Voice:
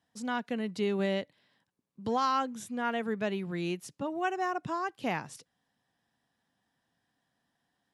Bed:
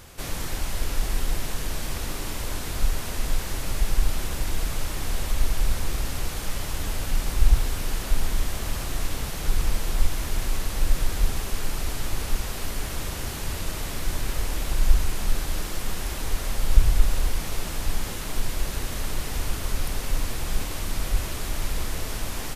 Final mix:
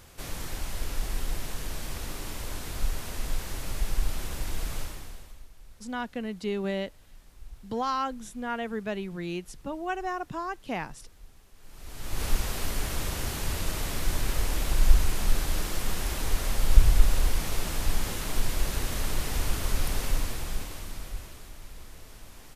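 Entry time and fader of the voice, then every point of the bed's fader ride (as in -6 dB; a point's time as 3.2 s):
5.65 s, -0.5 dB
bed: 4.8 s -5.5 dB
5.49 s -28 dB
11.54 s -28 dB
12.24 s -0.5 dB
20.04 s -0.5 dB
21.59 s -17.5 dB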